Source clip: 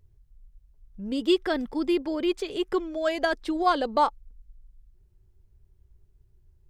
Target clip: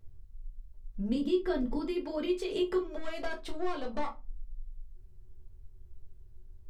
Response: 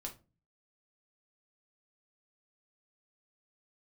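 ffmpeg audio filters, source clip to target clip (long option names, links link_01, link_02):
-filter_complex "[0:a]asettb=1/sr,asplit=3[link_01][link_02][link_03];[link_01]atrim=end=1.154[link_04];[link_02]atrim=start=1.15:end=1.76,asetpts=PTS-STARTPTS,afade=type=in:duration=0.004:curve=qsin,afade=type=out:start_time=0.606:duration=0.004:curve=qsin,lowshelf=frequency=400:gain=9.5[link_05];[link_03]atrim=start=1.756[link_06];[link_04][link_05]acrossfade=duration=0.004:curve1=hsin:curve2=qsin[link_07];[link_07][link_06]acrossfade=duration=0.004:curve1=qsin:curve2=hsin,acompressor=threshold=-32dB:ratio=6,asettb=1/sr,asplit=3[link_08][link_09][link_10];[link_08]atrim=end=2.964[link_11];[link_09]atrim=start=2.96:end=4.08,asetpts=PTS-STARTPTS,afade=type=in:duration=0.004:curve=qsin,afade=type=out:start_time=1.116:duration=0.004:curve=qsin,aeval=exprs='(tanh(44.7*val(0)+0.6)-tanh(0.6))/44.7':channel_layout=same[link_12];[link_10]atrim=start=4.076[link_13];[link_11][link_12]acrossfade=duration=0.004:curve1=hsin:curve2=qsin[link_14];[link_14][link_13]acrossfade=duration=0.004:curve1=qsin:curve2=hsin[link_15];[1:a]atrim=start_sample=2205,afade=type=out:start_time=0.27:duration=0.01,atrim=end_sample=12348,asetrate=48510,aresample=44100[link_16];[link_15][link_16]afir=irnorm=-1:irlink=0,volume=5.5dB"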